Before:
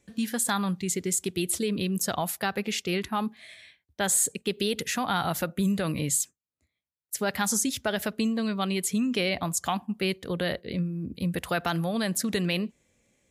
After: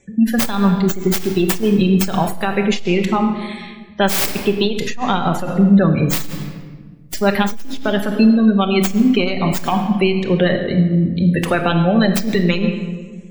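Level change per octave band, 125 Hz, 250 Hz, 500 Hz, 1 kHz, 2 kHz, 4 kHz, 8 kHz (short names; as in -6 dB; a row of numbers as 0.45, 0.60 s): +14.5, +14.0, +12.5, +10.0, +9.0, +7.5, -2.0 dB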